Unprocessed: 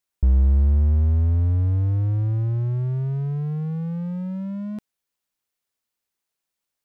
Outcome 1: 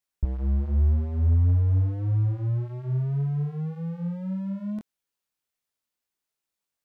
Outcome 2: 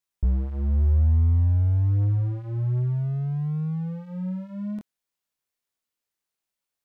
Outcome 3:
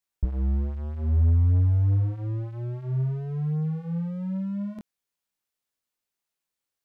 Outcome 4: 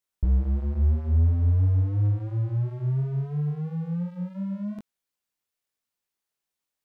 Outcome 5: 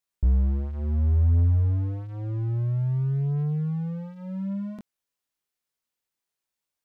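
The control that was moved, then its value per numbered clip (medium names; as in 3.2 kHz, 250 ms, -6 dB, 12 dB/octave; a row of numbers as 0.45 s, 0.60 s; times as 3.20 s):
chorus, rate: 1.8 Hz, 0.52 Hz, 1.1 Hz, 2.9 Hz, 0.25 Hz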